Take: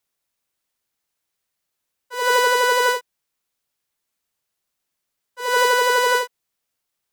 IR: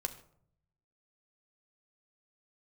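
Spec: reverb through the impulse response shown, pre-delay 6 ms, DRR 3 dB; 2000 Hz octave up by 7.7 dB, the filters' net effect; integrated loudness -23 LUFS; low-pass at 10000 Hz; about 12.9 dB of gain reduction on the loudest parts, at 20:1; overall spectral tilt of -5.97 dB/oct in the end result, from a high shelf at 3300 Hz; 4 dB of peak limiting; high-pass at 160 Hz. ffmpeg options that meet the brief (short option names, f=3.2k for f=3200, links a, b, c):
-filter_complex "[0:a]highpass=160,lowpass=10k,equalizer=f=2k:t=o:g=8.5,highshelf=f=3.3k:g=8,acompressor=threshold=-20dB:ratio=20,alimiter=limit=-15dB:level=0:latency=1,asplit=2[a][b];[1:a]atrim=start_sample=2205,adelay=6[c];[b][c]afir=irnorm=-1:irlink=0,volume=-4dB[d];[a][d]amix=inputs=2:normalize=0,volume=0.5dB"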